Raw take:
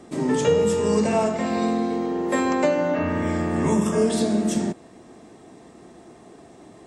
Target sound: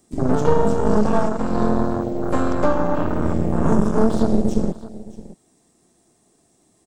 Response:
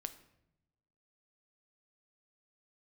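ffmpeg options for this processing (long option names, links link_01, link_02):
-filter_complex "[0:a]aeval=exprs='0.447*(cos(1*acos(clip(val(0)/0.447,-1,1)))-cos(1*PI/2))+0.0316*(cos(3*acos(clip(val(0)/0.447,-1,1)))-cos(3*PI/2))+0.1*(cos(6*acos(clip(val(0)/0.447,-1,1)))-cos(6*PI/2))':channel_layout=same,aemphasis=mode=production:type=50fm,afwtdn=0.0794,bass=frequency=250:gain=5,treble=frequency=4000:gain=9,acrossover=split=5300[link_01][link_02];[link_02]acompressor=threshold=-56dB:ratio=4:attack=1:release=60[link_03];[link_01][link_03]amix=inputs=2:normalize=0,asplit=2[link_04][link_05];[link_05]aecho=0:1:617:0.133[link_06];[link_04][link_06]amix=inputs=2:normalize=0,volume=1dB"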